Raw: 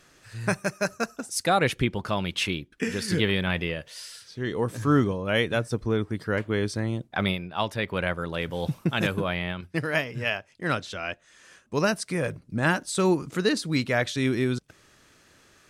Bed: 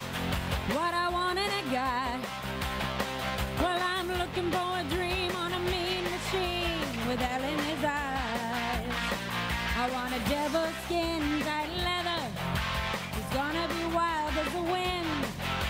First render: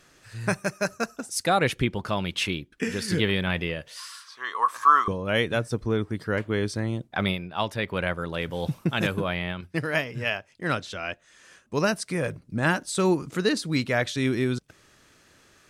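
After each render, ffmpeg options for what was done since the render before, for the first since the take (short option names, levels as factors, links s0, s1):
-filter_complex "[0:a]asettb=1/sr,asplit=3[s0][s1][s2];[s0]atrim=end=3.974[s3];[s1]atrim=start=3.97:end=5.08,asetpts=PTS-STARTPTS,afade=t=in:d=0.004:c=qsin,afade=t=out:st=1.106:d=0.004:c=qsin,highpass=f=1100:t=q:w=13[s4];[s2]atrim=start=5.076[s5];[s3][s4]acrossfade=d=0.004:c1=hsin:c2=qsin[s6];[s6][s5]acrossfade=d=0.004:c1=qsin:c2=hsin"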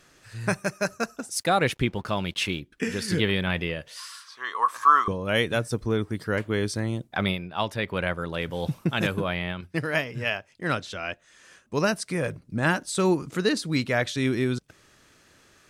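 -filter_complex "[0:a]asettb=1/sr,asplit=3[s0][s1][s2];[s0]atrim=end=1.344[s3];[s1]atrim=start=1.34:end=2.6,asetpts=PTS-STARTPTS,afade=t=in:d=0.004:c=qsin,afade=t=out:st=1.256:d=0.004:c=qsin,aeval=exprs='sgn(val(0))*max(abs(val(0))-0.00188,0)':c=same[s4];[s2]atrim=start=2.596[s5];[s3][s4]acrossfade=d=0.004:c1=hsin:c2=qsin[s6];[s6][s5]acrossfade=d=0.004:c1=qsin:c2=hsin,asettb=1/sr,asplit=3[s7][s8][s9];[s7]atrim=end=5.214[s10];[s8]atrim=start=5.21:end=7.18,asetpts=PTS-STARTPTS,afade=t=in:d=0.004:c=qsin,afade=t=out:st=1.966:d=0.004:c=qsin,highshelf=f=6400:g=7[s11];[s9]atrim=start=7.176[s12];[s10][s11]acrossfade=d=0.004:c1=hsin:c2=qsin[s13];[s13][s12]acrossfade=d=0.004:c1=qsin:c2=hsin"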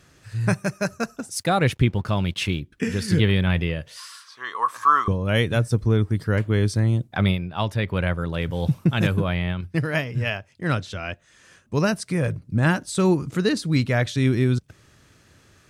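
-af "equalizer=f=94:t=o:w=2:g=11.5"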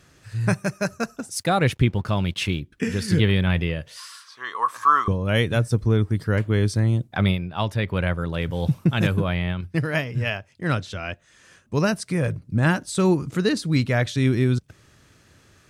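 -af anull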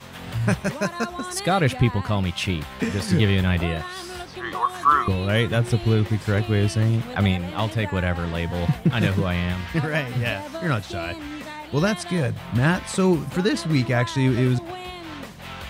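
-filter_complex "[1:a]volume=0.596[s0];[0:a][s0]amix=inputs=2:normalize=0"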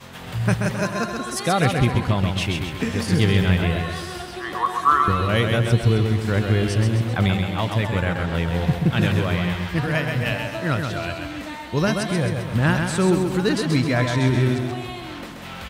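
-af "aecho=1:1:131|262|393|524|655|786:0.562|0.287|0.146|0.0746|0.038|0.0194"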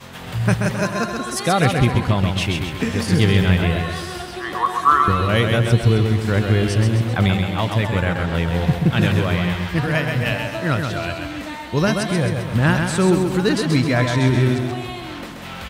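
-af "volume=1.33"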